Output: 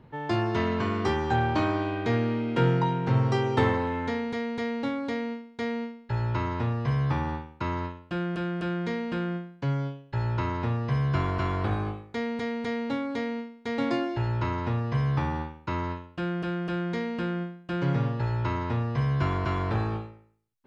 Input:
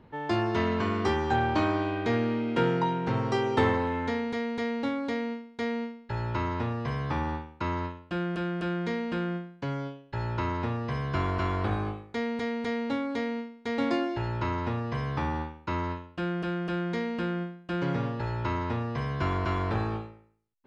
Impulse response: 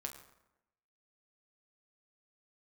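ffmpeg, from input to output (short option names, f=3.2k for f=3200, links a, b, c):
-af "equalizer=f=130:w=4.8:g=10.5"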